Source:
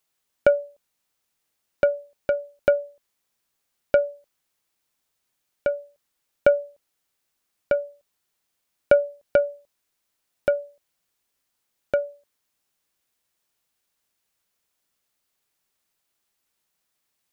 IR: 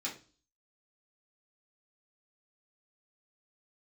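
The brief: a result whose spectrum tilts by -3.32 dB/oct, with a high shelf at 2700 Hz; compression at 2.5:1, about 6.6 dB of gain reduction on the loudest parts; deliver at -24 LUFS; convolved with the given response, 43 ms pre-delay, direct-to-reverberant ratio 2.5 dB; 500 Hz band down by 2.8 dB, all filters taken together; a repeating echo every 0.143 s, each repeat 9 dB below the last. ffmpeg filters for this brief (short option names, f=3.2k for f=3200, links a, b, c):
-filter_complex "[0:a]equalizer=f=500:t=o:g=-3.5,highshelf=f=2.7k:g=4.5,acompressor=threshold=-25dB:ratio=2.5,aecho=1:1:143|286|429|572:0.355|0.124|0.0435|0.0152,asplit=2[a][b];[1:a]atrim=start_sample=2205,adelay=43[c];[b][c]afir=irnorm=-1:irlink=0,volume=-4.5dB[d];[a][d]amix=inputs=2:normalize=0,volume=6.5dB"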